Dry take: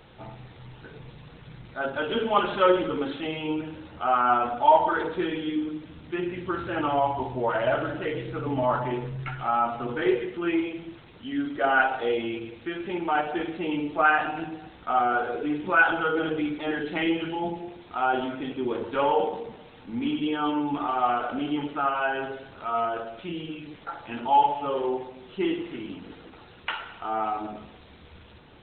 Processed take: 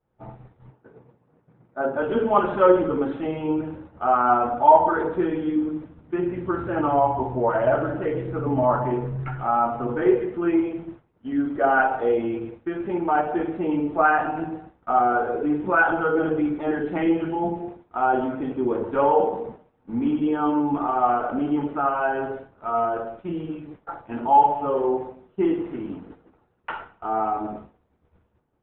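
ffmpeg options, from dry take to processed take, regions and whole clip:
-filter_complex "[0:a]asettb=1/sr,asplit=3[a][b][c];[a]atrim=end=0.704[d];[b]atrim=start=0.7:end=2.01,asetpts=PTS-STARTPTS,afade=t=in:d=0.004:c=qsin,afade=t=out:st=1.306:d=0.004:c=qsin,highpass=300,aemphasis=mode=reproduction:type=riaa,bandreject=f=50:t=h:w=6,bandreject=f=100:t=h:w=6,bandreject=f=150:t=h:w=6,bandreject=f=200:t=h:w=6,bandreject=f=250:t=h:w=6,bandreject=f=300:t=h:w=6,bandreject=f=350:t=h:w=6,bandreject=f=400:t=h:w=6[e];[c]atrim=start=2.006[f];[d][e]acrossfade=d=0.004:c1=hsin:c2=qsin[g];[g][f]acrossfade=d=0.004:c1=qsin:c2=hsin,lowpass=1.2k,agate=range=-33dB:threshold=-37dB:ratio=3:detection=peak,volume=5dB"

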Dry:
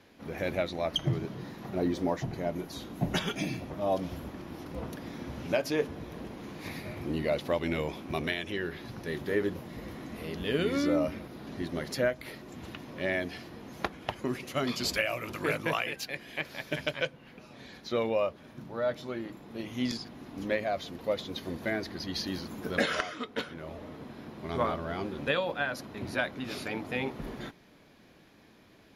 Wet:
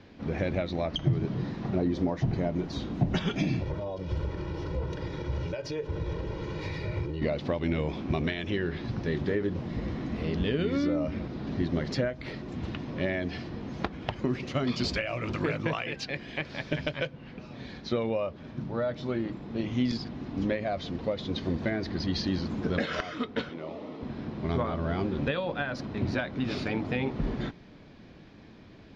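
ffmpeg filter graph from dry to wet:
-filter_complex "[0:a]asettb=1/sr,asplit=3[a][b][c];[a]atrim=end=3.624[d];[b]atrim=start=3.62:end=7.22,asetpts=PTS-STARTPTS,afade=t=in:d=0.004:c=qsin,afade=t=out:st=3.596:d=0.004:c=qsin,acompressor=threshold=-38dB:ratio=10:attack=3.2:release=140:knee=1:detection=peak,aecho=1:1:2.1:0.91,atrim=end_sample=158760[e];[c]atrim=start=7.216[f];[d][e]acrossfade=d=0.004:c1=hsin:c2=qsin[g];[g][f]acrossfade=d=0.004:c1=qsin:c2=hsin,asettb=1/sr,asplit=3[h][i][j];[h]atrim=end=23.504[k];[i]atrim=start=23.5:end=24.03,asetpts=PTS-STARTPTS,afade=t=in:d=0.004:c=qsin,afade=t=out:st=0.526:d=0.004:c=qsin,highpass=270,lowpass=7.4k,equalizer=f=1.6k:t=o:w=0.21:g=-13[l];[j]atrim=start=24.026[m];[k][l]acrossfade=d=0.004:c1=hsin:c2=qsin[n];[n][m]acrossfade=d=0.004:c1=qsin:c2=hsin,lowpass=f=5.6k:w=0.5412,lowpass=f=5.6k:w=1.3066,acompressor=threshold=-31dB:ratio=6,lowshelf=f=270:g=10.5,volume=2.5dB"

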